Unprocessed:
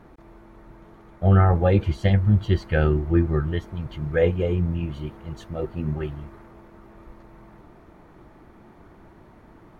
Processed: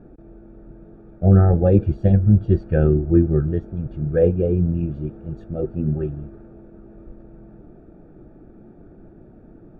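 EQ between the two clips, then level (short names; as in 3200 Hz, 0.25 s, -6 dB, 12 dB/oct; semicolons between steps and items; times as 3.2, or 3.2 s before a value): running mean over 43 samples; bell 73 Hz -5.5 dB 1.3 oct; +7.0 dB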